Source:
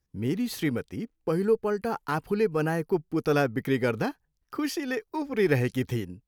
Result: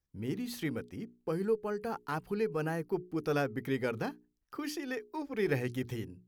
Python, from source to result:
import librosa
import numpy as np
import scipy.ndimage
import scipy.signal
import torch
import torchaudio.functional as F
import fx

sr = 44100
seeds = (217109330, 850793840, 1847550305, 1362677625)

y = fx.hum_notches(x, sr, base_hz=60, count=7)
y = y * librosa.db_to_amplitude(-7.0)